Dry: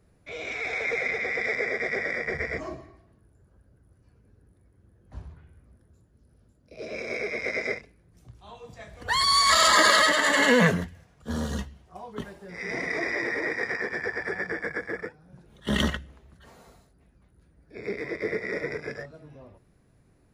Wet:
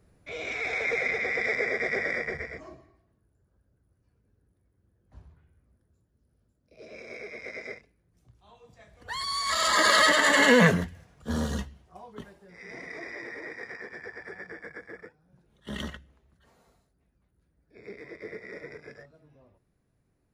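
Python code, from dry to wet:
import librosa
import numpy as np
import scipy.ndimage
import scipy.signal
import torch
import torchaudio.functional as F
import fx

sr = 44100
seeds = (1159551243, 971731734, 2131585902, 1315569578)

y = fx.gain(x, sr, db=fx.line((2.18, 0.0), (2.58, -10.0), (9.4, -10.0), (10.09, 1.0), (11.42, 1.0), (12.59, -11.0)))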